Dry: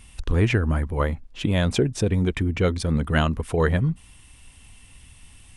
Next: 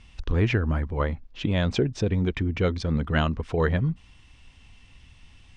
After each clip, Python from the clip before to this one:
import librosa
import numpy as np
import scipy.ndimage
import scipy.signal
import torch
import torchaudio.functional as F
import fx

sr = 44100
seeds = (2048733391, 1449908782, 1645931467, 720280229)

y = scipy.signal.sosfilt(scipy.signal.butter(4, 5800.0, 'lowpass', fs=sr, output='sos'), x)
y = y * 10.0 ** (-2.5 / 20.0)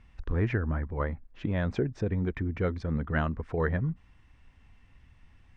y = fx.curve_eq(x, sr, hz=(1100.0, 1800.0, 3000.0), db=(0, 2, -11))
y = y * 10.0 ** (-5.0 / 20.0)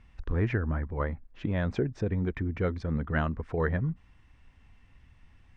y = x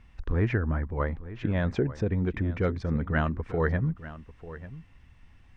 y = x + 10.0 ** (-15.5 / 20.0) * np.pad(x, (int(893 * sr / 1000.0), 0))[:len(x)]
y = y * 10.0 ** (2.0 / 20.0)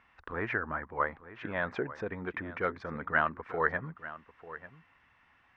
y = fx.bandpass_q(x, sr, hz=1300.0, q=1.2)
y = y * 10.0 ** (5.0 / 20.0)